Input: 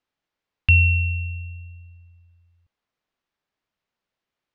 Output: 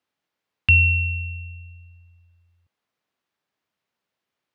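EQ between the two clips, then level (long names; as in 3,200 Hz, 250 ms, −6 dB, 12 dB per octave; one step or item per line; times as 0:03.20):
high-pass filter 99 Hz 12 dB per octave
+2.0 dB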